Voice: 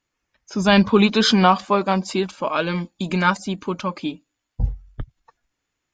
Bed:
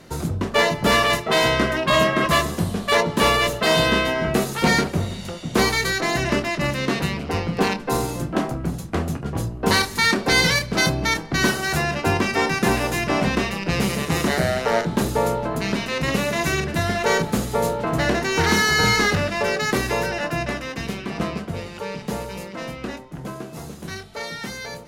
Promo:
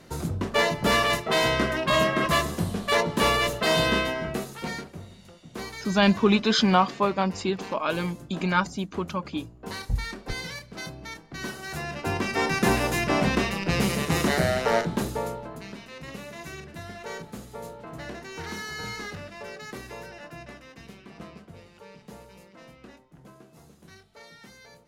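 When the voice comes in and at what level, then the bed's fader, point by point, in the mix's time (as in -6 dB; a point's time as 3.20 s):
5.30 s, -5.0 dB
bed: 3.99 s -4.5 dB
4.86 s -18 dB
11.21 s -18 dB
12.61 s -2.5 dB
14.75 s -2.5 dB
15.75 s -17.5 dB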